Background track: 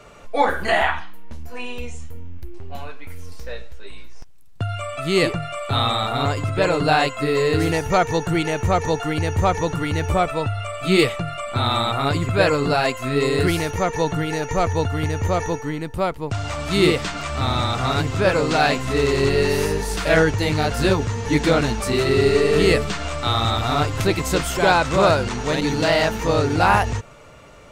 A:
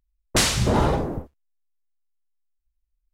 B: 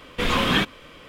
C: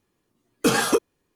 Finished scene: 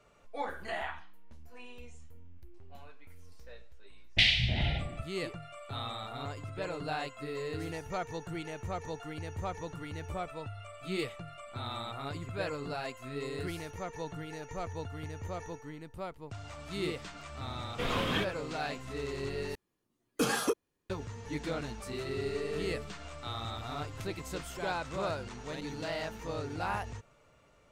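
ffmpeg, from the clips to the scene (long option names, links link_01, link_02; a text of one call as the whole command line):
ffmpeg -i bed.wav -i cue0.wav -i cue1.wav -i cue2.wav -filter_complex "[0:a]volume=-18.5dB[link_01];[1:a]firequalizer=gain_entry='entry(120,0);entry(220,-9);entry(450,-20);entry(700,-5);entry(1100,-29);entry(2000,9);entry(3300,11);entry(6800,-20);entry(12000,-26)':delay=0.05:min_phase=1[link_02];[2:a]equalizer=frequency=530:width=1.5:gain=4.5[link_03];[3:a]acontrast=30[link_04];[link_01]asplit=2[link_05][link_06];[link_05]atrim=end=19.554[link_07];[link_04]atrim=end=1.35,asetpts=PTS-STARTPTS,volume=-14.5dB[link_08];[link_06]atrim=start=20.896[link_09];[link_02]atrim=end=3.13,asetpts=PTS-STARTPTS,volume=-7.5dB,afade=type=in:duration=0.004:curve=hsin,afade=type=out:start_time=3.126:duration=0.004:curve=hsin,adelay=3820[link_10];[link_03]atrim=end=1.08,asetpts=PTS-STARTPTS,volume=-12dB,afade=type=in:duration=0.004:curve=hsin,afade=type=out:start_time=1.076:duration=0.004:curve=hsin,adelay=17600[link_11];[link_07][link_08]acrossfade=duration=0.004:curve1=hsin:curve2=hsin[link_12];[link_12][link_09]acrossfade=duration=0.004:curve1=hsin:curve2=hsin[link_13];[link_13][link_10][link_11]amix=inputs=3:normalize=0" out.wav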